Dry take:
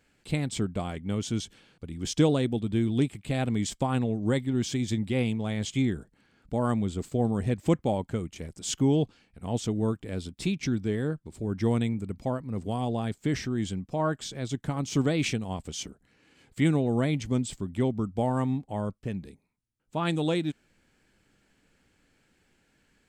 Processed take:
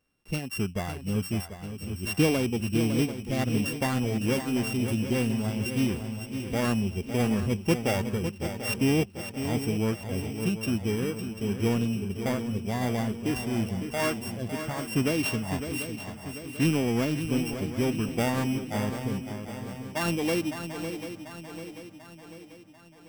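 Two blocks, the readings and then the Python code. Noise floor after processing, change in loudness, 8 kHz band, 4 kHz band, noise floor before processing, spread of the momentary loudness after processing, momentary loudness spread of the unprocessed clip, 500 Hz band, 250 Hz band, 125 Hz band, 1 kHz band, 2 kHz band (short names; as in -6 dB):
-48 dBFS, +0.5 dB, +1.0 dB, +2.0 dB, -69 dBFS, 11 LU, 9 LU, +0.5 dB, +0.5 dB, -0.5 dB, 0.0 dB, +5.5 dB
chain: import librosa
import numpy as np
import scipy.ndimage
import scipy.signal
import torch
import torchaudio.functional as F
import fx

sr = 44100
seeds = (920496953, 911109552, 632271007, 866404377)

p1 = np.r_[np.sort(x[:len(x) // 16 * 16].reshape(-1, 16), axis=1).ravel(), x[len(x) // 16 * 16:]]
p2 = fx.noise_reduce_blind(p1, sr, reduce_db=11)
p3 = np.clip(p2, -10.0 ** (-28.5 / 20.0), 10.0 ** (-28.5 / 20.0))
p4 = p2 + (p3 * librosa.db_to_amplitude(-4.5))
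p5 = fx.echo_swing(p4, sr, ms=741, ratio=3, feedback_pct=50, wet_db=-9.0)
y = p5 * librosa.db_to_amplitude(-2.0)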